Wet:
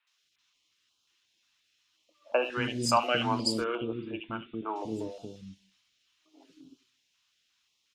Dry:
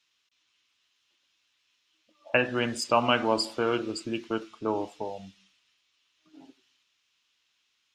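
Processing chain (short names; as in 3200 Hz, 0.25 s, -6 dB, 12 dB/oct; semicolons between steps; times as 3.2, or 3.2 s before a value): 3.57–4.69 rippled Chebyshev low-pass 3600 Hz, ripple 3 dB; three bands offset in time mids, highs, lows 70/230 ms, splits 350/2700 Hz; stepped notch 5.6 Hz 420–1900 Hz; gain +1.5 dB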